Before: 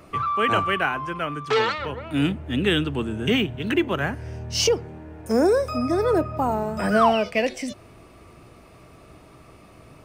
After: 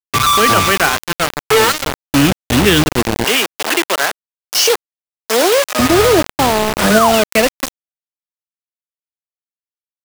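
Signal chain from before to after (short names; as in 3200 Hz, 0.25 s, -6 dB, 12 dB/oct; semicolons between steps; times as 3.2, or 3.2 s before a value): bit-crush 4-bit; 3.24–5.79 HPF 530 Hz 12 dB/oct; maximiser +11 dB; gain -1 dB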